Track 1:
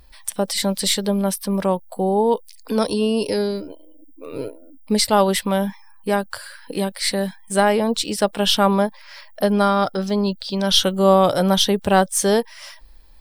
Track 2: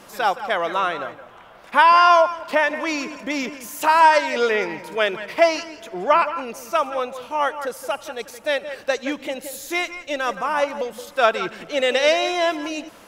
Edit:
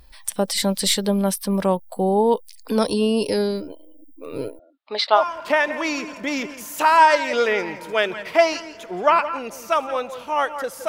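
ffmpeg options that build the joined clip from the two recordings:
-filter_complex "[0:a]asettb=1/sr,asplit=3[a][b][c];[a]atrim=end=4.594[d];[b]atrim=start=4.59:end=5.22,asetpts=PTS-STARTPTS,afade=t=in:d=0.004:c=qsin,afade=t=out:st=0.626:d=0.004:c=qsin,highpass=f=430:w=0.5412,highpass=f=430:w=1.3066,equalizer=f=480:t=q:w=4:g=-7,equalizer=f=710:t=q:w=4:g=6,equalizer=f=1.2k:t=q:w=4:g=8,equalizer=f=3.8k:t=q:w=4:g=6,lowpass=f=4k:w=0.5412,lowpass=f=4k:w=1.3066[e];[c]atrim=start=5.216[f];[d][e]acrossfade=d=0.004:c1=hsin:c2=qsin[g];[g][f]acrossfade=d=0.004:c1=qsin:c2=hsin,apad=whole_dur=10.88,atrim=end=10.88,atrim=end=5.22,asetpts=PTS-STARTPTS[h];[1:a]atrim=start=2.17:end=7.91,asetpts=PTS-STARTPTS[i];[h][i]acrossfade=d=0.08:c1=tri:c2=tri"

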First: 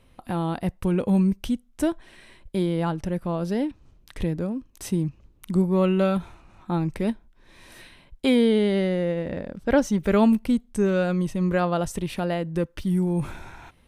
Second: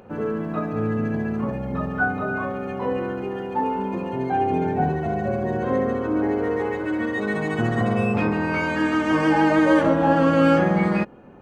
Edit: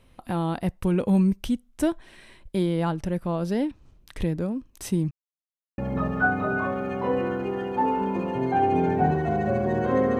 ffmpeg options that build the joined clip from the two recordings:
-filter_complex "[0:a]apad=whole_dur=10.19,atrim=end=10.19,asplit=2[a][b];[a]atrim=end=5.11,asetpts=PTS-STARTPTS,afade=t=out:st=5.106:d=0.004:c=hsin[c];[b]atrim=start=5.11:end=5.78,asetpts=PTS-STARTPTS,volume=0[d];[1:a]atrim=start=1.56:end=5.97,asetpts=PTS-STARTPTS,afade=t=in:d=0.004:c=hsin[e];[c][d][e]concat=n=3:v=0:a=1"

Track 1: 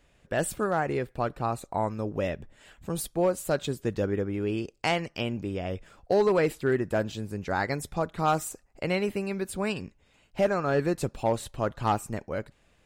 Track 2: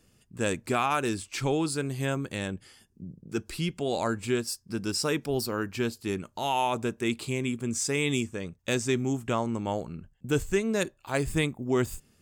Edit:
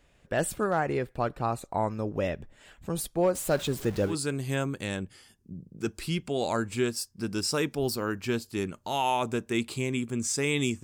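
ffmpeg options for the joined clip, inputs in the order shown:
-filter_complex "[0:a]asettb=1/sr,asplit=3[a][b][c];[a]atrim=end=3.354[d];[b]atrim=start=3.35:end=4.16,asetpts=PTS-STARTPTS,afade=t=in:d=0.004:c=qsin,afade=t=out:st=0.806:d=0.004:c=qsin,aeval=exprs='val(0)+0.5*0.015*sgn(val(0))':c=same[e];[c]atrim=start=4.156[f];[d][e]acrossfade=d=0.004:c1=hsin:c2=qsin[g];[g][f]acrossfade=d=0.004:c1=qsin:c2=hsin,apad=whole_dur=10.83,atrim=end=10.83,atrim=end=4.16,asetpts=PTS-STARTPTS[h];[1:a]atrim=start=1.57:end=8.34,asetpts=PTS-STARTPTS[i];[h][i]acrossfade=d=0.1:c1=tri:c2=tri"

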